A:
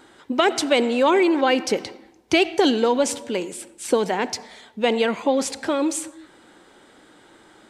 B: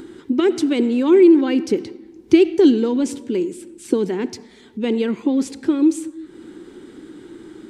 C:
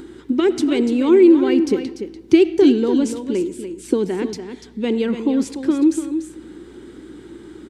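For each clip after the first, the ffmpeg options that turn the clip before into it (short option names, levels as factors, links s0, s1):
-af "acompressor=mode=upward:threshold=0.0224:ratio=2.5,lowshelf=f=470:t=q:w=3:g=9.5,volume=0.447"
-af "aecho=1:1:292:0.335,aeval=exprs='val(0)+0.00282*(sin(2*PI*60*n/s)+sin(2*PI*2*60*n/s)/2+sin(2*PI*3*60*n/s)/3+sin(2*PI*4*60*n/s)/4+sin(2*PI*5*60*n/s)/5)':c=same"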